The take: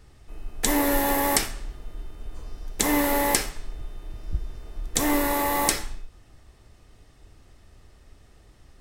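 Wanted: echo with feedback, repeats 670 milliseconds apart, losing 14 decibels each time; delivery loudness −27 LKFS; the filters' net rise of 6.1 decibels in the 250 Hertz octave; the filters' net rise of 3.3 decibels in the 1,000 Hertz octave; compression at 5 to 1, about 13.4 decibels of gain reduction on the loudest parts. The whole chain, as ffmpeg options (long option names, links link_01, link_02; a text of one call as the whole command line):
ffmpeg -i in.wav -af "equalizer=frequency=250:width_type=o:gain=7,equalizer=frequency=1000:width_type=o:gain=3.5,acompressor=threshold=-30dB:ratio=5,aecho=1:1:670|1340:0.2|0.0399,volume=8dB" out.wav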